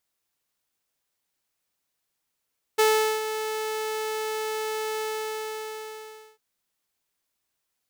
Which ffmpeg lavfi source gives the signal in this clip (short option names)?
-f lavfi -i "aevalsrc='0.2*(2*mod(435*t,1)-1)':d=3.6:s=44100,afade=t=in:d=0.015,afade=t=out:st=0.015:d=0.41:silence=0.282,afade=t=out:st=2.23:d=1.37"